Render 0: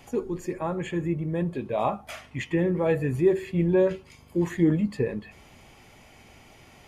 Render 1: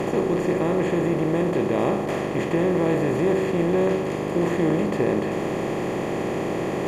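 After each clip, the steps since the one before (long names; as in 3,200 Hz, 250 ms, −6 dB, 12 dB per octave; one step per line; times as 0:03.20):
compressor on every frequency bin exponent 0.2
level −5.5 dB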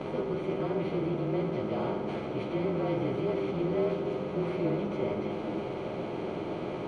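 partials spread apart or drawn together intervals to 110%
high-frequency loss of the air 120 metres
echo through a band-pass that steps 404 ms, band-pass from 250 Hz, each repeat 0.7 octaves, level −5 dB
level −6.5 dB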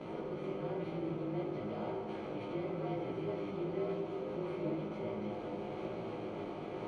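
camcorder AGC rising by 22 dB per second
chorus effect 1 Hz, delay 18 ms, depth 2.1 ms
on a send at −7.5 dB: convolution reverb RT60 0.40 s, pre-delay 37 ms
on the sum: level −6 dB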